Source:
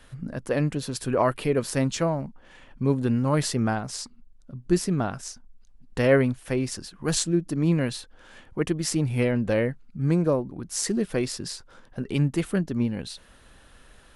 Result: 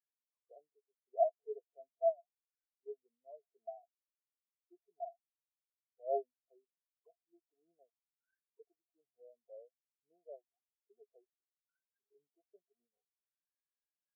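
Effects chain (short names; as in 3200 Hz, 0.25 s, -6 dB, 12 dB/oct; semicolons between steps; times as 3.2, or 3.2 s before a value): G.711 law mismatch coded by mu; bell 420 Hz +14 dB 0.3 oct; auto-wah 690–1800 Hz, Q 20, down, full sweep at -21.5 dBFS; spectral expander 2.5:1; gain +2 dB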